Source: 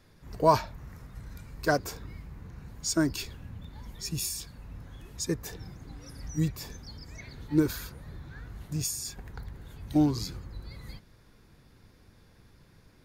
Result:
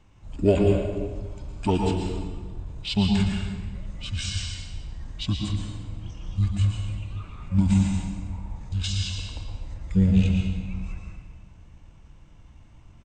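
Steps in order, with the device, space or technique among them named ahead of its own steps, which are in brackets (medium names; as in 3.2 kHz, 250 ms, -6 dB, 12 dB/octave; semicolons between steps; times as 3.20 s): monster voice (pitch shift -8 st; formant shift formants -2 st; bass shelf 220 Hz +6 dB; reverberation RT60 1.4 s, pre-delay 108 ms, DRR 0.5 dB)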